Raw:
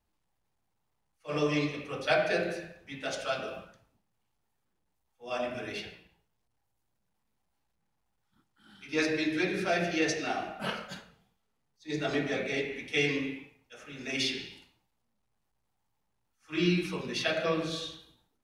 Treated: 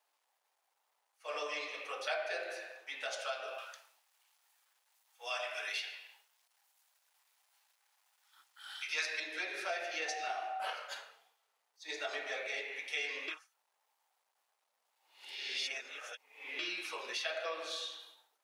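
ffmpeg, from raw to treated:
-filter_complex "[0:a]asettb=1/sr,asplit=3[s0][s1][s2];[s0]atrim=end=3.584[s3];[s1]atrim=start=3.58:end=9.2,asetpts=PTS-STARTPTS,afade=t=in:d=0.004:c=qsin,afade=t=out:st=5.616:d=0.004:c=qsin,tiltshelf=f=790:g=-9[s4];[s2]atrim=start=9.196[s5];[s3][s4]acrossfade=d=0.004:c1=hsin:c2=qsin[s6];[s6][s5]acrossfade=d=0.004:c1=qsin:c2=hsin,asettb=1/sr,asplit=3[s7][s8][s9];[s7]atrim=end=10.084[s10];[s8]atrim=start=10.08:end=10.73,asetpts=PTS-STARTPTS,afade=t=in:d=0.004:c=qsin,afade=t=out:st=0.646:d=0.004:c=qsin,aeval=exprs='val(0)+0.02*sin(2*PI*760*n/s)':c=same[s11];[s9]atrim=start=10.726[s12];[s10][s11]acrossfade=d=0.004:c1=hsin:c2=qsin[s13];[s13][s12]acrossfade=d=0.004:c1=qsin:c2=hsin,asplit=3[s14][s15][s16];[s14]atrim=end=13.282[s17];[s15]atrim=start=13.278:end=16.592,asetpts=PTS-STARTPTS,areverse[s18];[s16]atrim=start=16.588[s19];[s17][s18]acrossfade=d=0.004:c1=hsin:c2=hsin[s20];[s20][s19]acrossfade=d=0.004:c1=hsin:c2=hsin,highpass=f=570:w=0.5412,highpass=f=570:w=1.3066,acompressor=threshold=0.00447:ratio=2.5,volume=1.88"

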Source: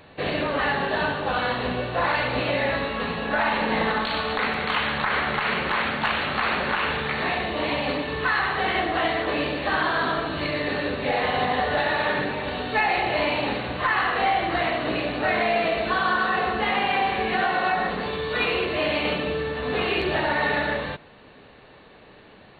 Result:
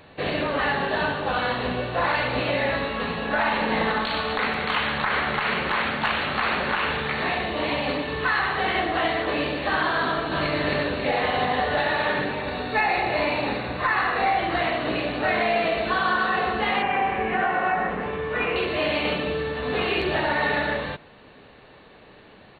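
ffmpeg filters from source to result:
-filter_complex "[0:a]asplit=2[s0][s1];[s1]afade=t=in:st=10.04:d=0.01,afade=t=out:st=10.56:d=0.01,aecho=0:1:270|540|810|1080|1350|1620|1890:0.668344|0.334172|0.167086|0.083543|0.0417715|0.0208857|0.0104429[s2];[s0][s2]amix=inputs=2:normalize=0,asettb=1/sr,asplit=3[s3][s4][s5];[s3]atrim=end=12.414[s6];[s4]atrim=start=12.41:end=14.38,asetpts=PTS-STARTPTS,afade=t=in:d=0.004:c=qsin,afade=t=out:st=1.966:d=0.004:c=qsin,bandreject=f=3100:w=6.7[s7];[s5]atrim=start=14.376[s8];[s6][s7]acrossfade=d=0.004:c1=hsin:c2=qsin[s9];[s9][s8]acrossfade=d=0.004:c1=qsin:c2=hsin,asettb=1/sr,asplit=3[s10][s11][s12];[s10]atrim=end=16.824[s13];[s11]atrim=start=16.82:end=18.56,asetpts=PTS-STARTPTS,afade=t=in:d=0.004:c=qsin,afade=t=out:st=1.736:d=0.004:c=qsin,lowpass=f=2500:w=0.5412,lowpass=f=2500:w=1.3066[s14];[s12]atrim=start=18.556[s15];[s13][s14]acrossfade=d=0.004:c1=hsin:c2=qsin[s16];[s16][s15]acrossfade=d=0.004:c1=qsin:c2=hsin"

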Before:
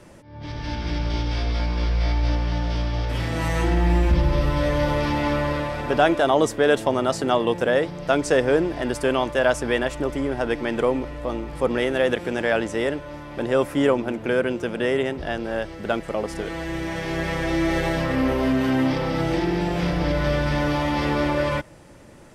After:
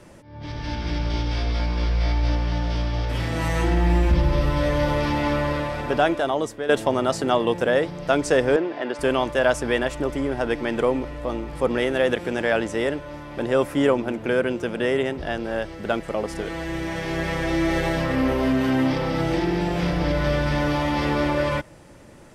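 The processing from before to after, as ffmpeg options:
-filter_complex "[0:a]asettb=1/sr,asplit=3[s0][s1][s2];[s0]atrim=end=8.564[s3];[s1]atrim=start=8.56:end=8.99,asetpts=PTS-STARTPTS,afade=t=in:d=0.004:c=qsin,afade=t=out:st=0.426:d=0.004:c=qsin,highpass=310,lowpass=3500[s4];[s2]atrim=start=8.986[s5];[s3][s4]acrossfade=d=0.004:c1=hsin:c2=qsin[s6];[s6][s5]acrossfade=d=0.004:c1=qsin:c2=hsin,asplit=2[s7][s8];[s7]atrim=end=6.69,asetpts=PTS-STARTPTS,afade=t=out:st=5.79:d=0.9:silence=0.266073[s9];[s8]atrim=start=6.69,asetpts=PTS-STARTPTS,afade=t=in:d=0.004:c=hsin:silence=0.266073[s10];[s9][s10]concat=n=2:v=0:a=1"

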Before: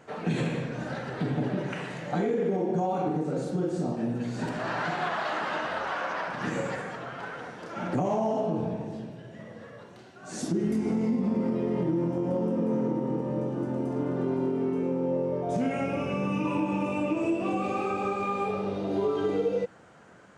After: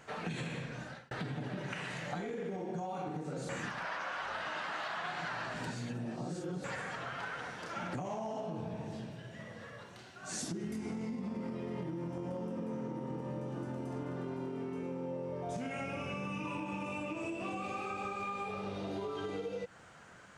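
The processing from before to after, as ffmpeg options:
-filter_complex "[0:a]asplit=4[s0][s1][s2][s3];[s0]atrim=end=1.11,asetpts=PTS-STARTPTS,afade=t=out:st=0.53:d=0.58[s4];[s1]atrim=start=1.11:end=3.492,asetpts=PTS-STARTPTS,afade=t=in:d=0.004:c=hsin[s5];[s2]atrim=start=3.488:end=6.642,asetpts=PTS-STARTPTS,areverse[s6];[s3]atrim=start=6.638[s7];[s4][s5]concat=n=2:v=0:a=1[s8];[s8][s6]acrossfade=d=0.004:c1=hsin:c2=hsin[s9];[s9][s7]acrossfade=d=0.004:c1=hsin:c2=hsin,equalizer=f=340:w=0.42:g=-10,acompressor=threshold=0.0112:ratio=6,volume=1.41"

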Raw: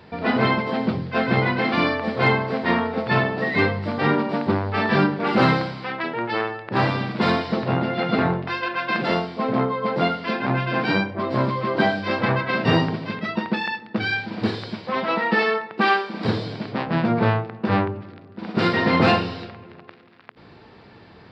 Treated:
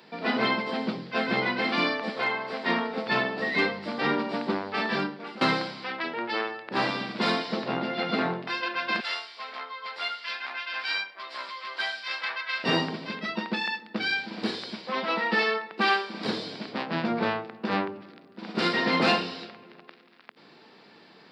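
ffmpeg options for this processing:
-filter_complex "[0:a]asettb=1/sr,asplit=3[s0][s1][s2];[s0]atrim=end=2.094[s3];[s1]atrim=start=2.09:end=2.66,asetpts=PTS-STARTPTS,afade=t=in:d=0.004:c=qsin,afade=t=out:st=0.566:d=0.004:c=qsin,acrossover=split=500|2900[s4][s5][s6];[s4]acompressor=threshold=0.0224:ratio=4[s7];[s5]acompressor=threshold=0.1:ratio=4[s8];[s6]acompressor=threshold=0.00794:ratio=4[s9];[s7][s8][s9]amix=inputs=3:normalize=0[s10];[s2]atrim=start=2.656[s11];[s3][s10]acrossfade=d=0.004:c1=hsin:c2=qsin[s12];[s12][s11]acrossfade=d=0.004:c1=qsin:c2=hsin,asettb=1/sr,asplit=3[s13][s14][s15];[s13]atrim=end=9.004[s16];[s14]atrim=start=9:end=12.64,asetpts=PTS-STARTPTS,afade=t=in:d=0.004:c=qsin,afade=t=out:st=3.636:d=0.004:c=qsin,highpass=1400[s17];[s15]atrim=start=12.636[s18];[s16][s17]acrossfade=d=0.004:c1=hsin:c2=qsin[s19];[s19][s18]acrossfade=d=0.004:c1=qsin:c2=hsin,asplit=2[s20][s21];[s20]atrim=end=5.41,asetpts=PTS-STARTPTS,afade=t=out:st=4.74:d=0.67:silence=0.0891251[s22];[s21]atrim=start=5.41,asetpts=PTS-STARTPTS,afade=t=in:d=0.004:c=hsin:silence=0.0891251[s23];[s22][s23]concat=n=2:v=0:a=1,highpass=f=180:w=0.5412,highpass=f=180:w=1.3066,highshelf=f=3300:g=12,volume=0.473"

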